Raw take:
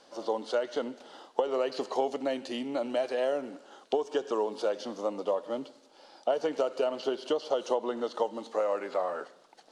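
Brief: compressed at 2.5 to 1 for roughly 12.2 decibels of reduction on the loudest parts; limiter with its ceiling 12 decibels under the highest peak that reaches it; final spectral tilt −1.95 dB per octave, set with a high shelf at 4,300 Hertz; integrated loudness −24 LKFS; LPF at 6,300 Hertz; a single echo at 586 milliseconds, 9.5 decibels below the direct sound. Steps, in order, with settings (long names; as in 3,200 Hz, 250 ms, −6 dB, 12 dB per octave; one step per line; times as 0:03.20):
low-pass filter 6,300 Hz
high-shelf EQ 4,300 Hz +3.5 dB
downward compressor 2.5 to 1, threshold −42 dBFS
brickwall limiter −33.5 dBFS
single-tap delay 586 ms −9.5 dB
level +20 dB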